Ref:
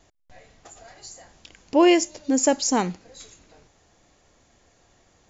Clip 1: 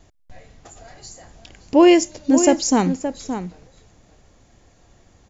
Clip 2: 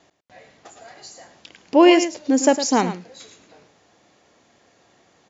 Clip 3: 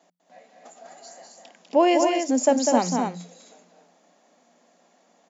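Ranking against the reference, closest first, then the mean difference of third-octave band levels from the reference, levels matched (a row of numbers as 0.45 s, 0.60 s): 2, 1, 3; 2.0 dB, 3.0 dB, 5.5 dB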